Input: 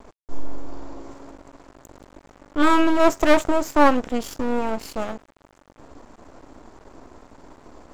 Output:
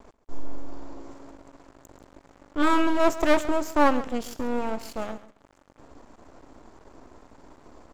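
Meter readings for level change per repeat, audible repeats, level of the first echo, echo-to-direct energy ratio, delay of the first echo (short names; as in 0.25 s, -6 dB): -15.0 dB, 2, -16.0 dB, -16.0 dB, 0.137 s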